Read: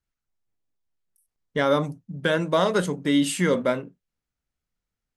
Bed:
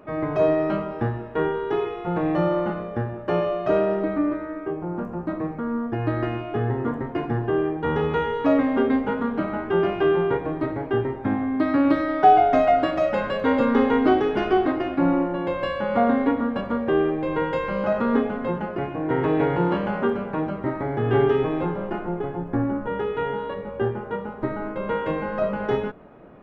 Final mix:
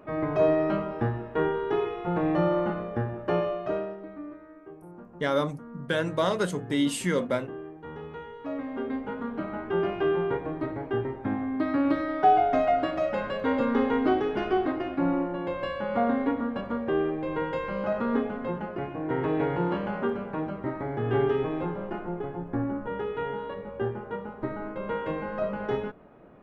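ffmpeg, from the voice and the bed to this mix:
ffmpeg -i stem1.wav -i stem2.wav -filter_complex "[0:a]adelay=3650,volume=-4.5dB[link_01];[1:a]volume=9dB,afade=type=out:start_time=3.29:duration=0.68:silence=0.188365,afade=type=in:start_time=8.39:duration=1.4:silence=0.266073[link_02];[link_01][link_02]amix=inputs=2:normalize=0" out.wav

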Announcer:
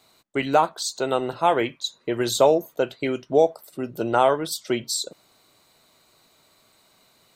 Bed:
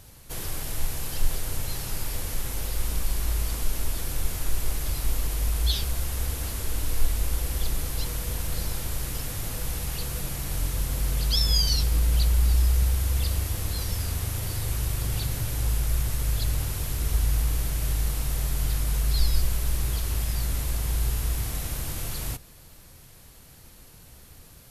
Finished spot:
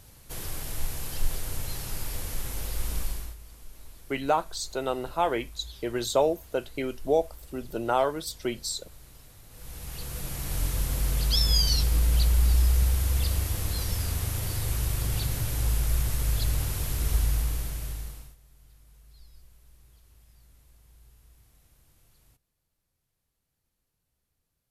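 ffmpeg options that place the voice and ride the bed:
ffmpeg -i stem1.wav -i stem2.wav -filter_complex "[0:a]adelay=3750,volume=-6dB[link_01];[1:a]volume=16.5dB,afade=type=out:start_time=3.01:duration=0.35:silence=0.141254,afade=type=in:start_time=9.49:duration=1.14:silence=0.105925,afade=type=out:start_time=17.14:duration=1.22:silence=0.0316228[link_02];[link_01][link_02]amix=inputs=2:normalize=0" out.wav

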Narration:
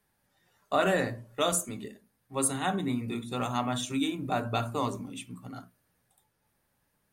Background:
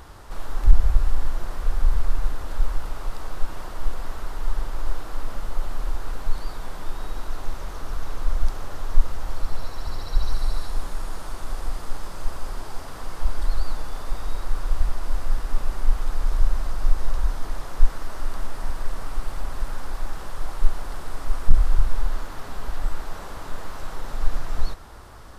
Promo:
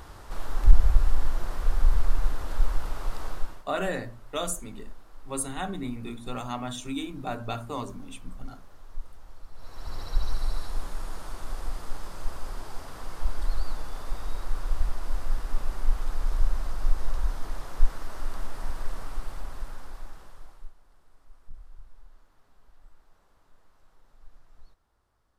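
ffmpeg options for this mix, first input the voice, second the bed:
ffmpeg -i stem1.wav -i stem2.wav -filter_complex "[0:a]adelay=2950,volume=-3.5dB[link_01];[1:a]volume=13dB,afade=type=out:start_time=3.28:duration=0.36:silence=0.133352,afade=type=in:start_time=9.54:duration=0.47:silence=0.188365,afade=type=out:start_time=18.9:duration=1.84:silence=0.0595662[link_02];[link_01][link_02]amix=inputs=2:normalize=0" out.wav

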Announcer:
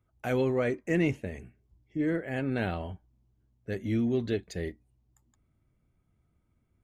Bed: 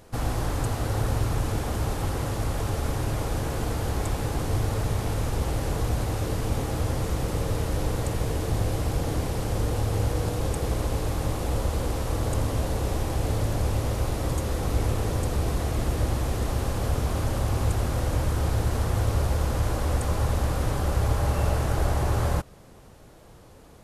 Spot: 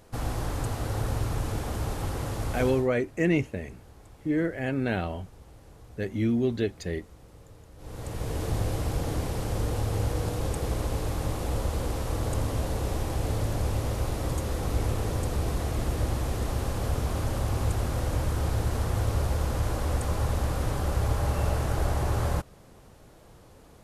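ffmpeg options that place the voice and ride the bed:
ffmpeg -i stem1.wav -i stem2.wav -filter_complex "[0:a]adelay=2300,volume=2.5dB[link_01];[1:a]volume=18dB,afade=type=out:start_time=2.65:duration=0.23:silence=0.0944061,afade=type=in:start_time=7.77:duration=0.67:silence=0.0841395[link_02];[link_01][link_02]amix=inputs=2:normalize=0" out.wav

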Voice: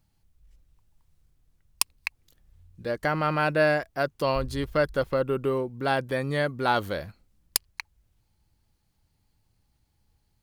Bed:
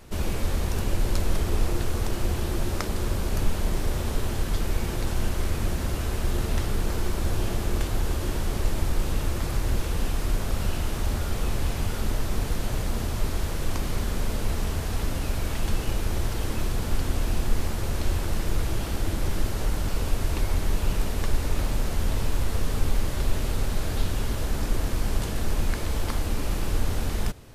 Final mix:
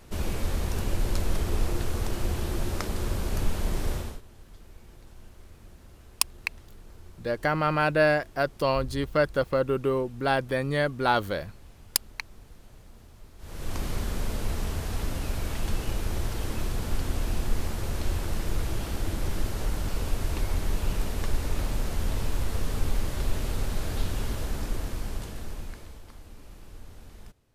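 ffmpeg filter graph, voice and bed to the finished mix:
ffmpeg -i stem1.wav -i stem2.wav -filter_complex "[0:a]adelay=4400,volume=0.5dB[link_01];[1:a]volume=18dB,afade=type=out:start_time=3.92:duration=0.29:silence=0.0891251,afade=type=in:start_time=13.38:duration=0.43:silence=0.0944061,afade=type=out:start_time=24.27:duration=1.75:silence=0.133352[link_02];[link_01][link_02]amix=inputs=2:normalize=0" out.wav

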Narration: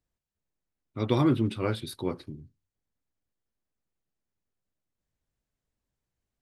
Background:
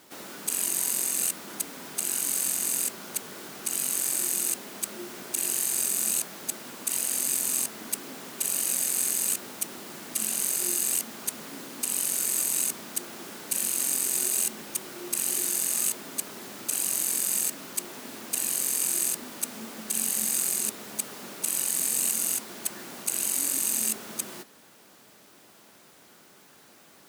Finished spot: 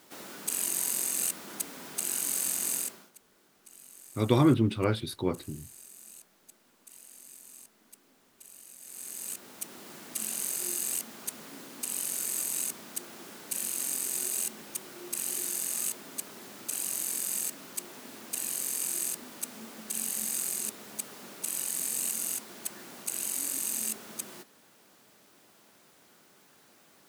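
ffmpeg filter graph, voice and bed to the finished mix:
ffmpeg -i stem1.wav -i stem2.wav -filter_complex "[0:a]adelay=3200,volume=1.5dB[link_01];[1:a]volume=15dB,afade=type=out:start_time=2.73:duration=0.38:silence=0.0944061,afade=type=in:start_time=8.79:duration=1.1:silence=0.125893[link_02];[link_01][link_02]amix=inputs=2:normalize=0" out.wav

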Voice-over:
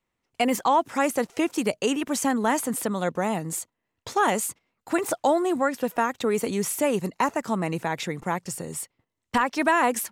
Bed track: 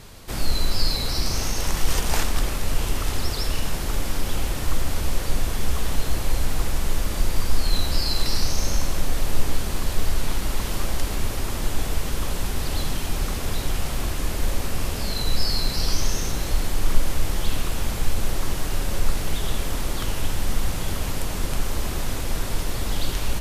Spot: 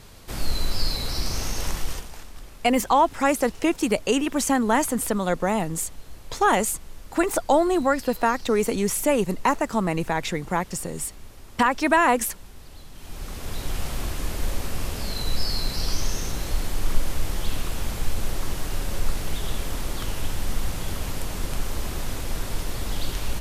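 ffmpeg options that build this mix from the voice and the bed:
ffmpeg -i stem1.wav -i stem2.wav -filter_complex "[0:a]adelay=2250,volume=2.5dB[link_01];[1:a]volume=13dB,afade=type=out:start_time=1.67:duration=0.44:silence=0.158489,afade=type=in:start_time=12.92:duration=0.89:silence=0.158489[link_02];[link_01][link_02]amix=inputs=2:normalize=0" out.wav

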